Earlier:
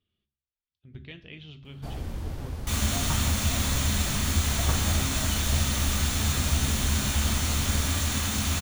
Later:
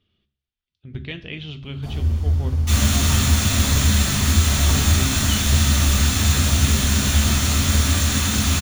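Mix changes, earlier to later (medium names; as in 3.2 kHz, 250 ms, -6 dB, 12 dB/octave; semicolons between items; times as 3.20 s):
speech +11.5 dB; first sound: send on; second sound: send +8.5 dB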